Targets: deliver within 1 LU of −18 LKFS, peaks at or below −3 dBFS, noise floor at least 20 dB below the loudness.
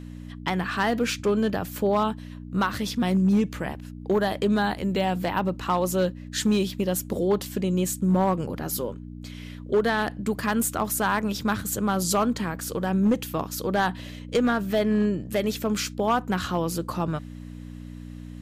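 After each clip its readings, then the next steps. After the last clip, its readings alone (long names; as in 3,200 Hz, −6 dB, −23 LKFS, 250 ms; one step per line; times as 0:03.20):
share of clipped samples 0.9%; peaks flattened at −15.5 dBFS; mains hum 60 Hz; hum harmonics up to 300 Hz; level of the hum −38 dBFS; integrated loudness −25.5 LKFS; sample peak −15.5 dBFS; target loudness −18.0 LKFS
→ clipped peaks rebuilt −15.5 dBFS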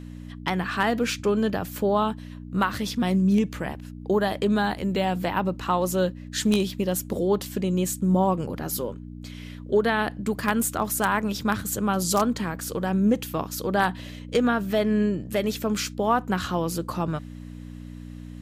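share of clipped samples 0.0%; mains hum 60 Hz; hum harmonics up to 300 Hz; level of the hum −37 dBFS
→ hum removal 60 Hz, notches 5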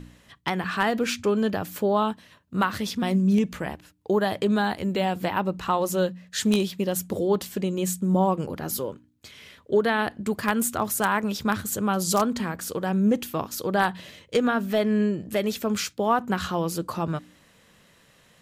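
mains hum none found; integrated loudness −25.5 LKFS; sample peak −6.5 dBFS; target loudness −18.0 LKFS
→ level +7.5 dB
brickwall limiter −3 dBFS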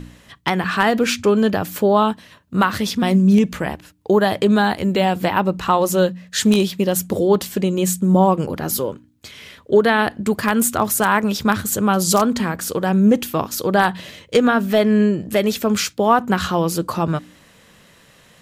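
integrated loudness −18.0 LKFS; sample peak −3.0 dBFS; background noise floor −51 dBFS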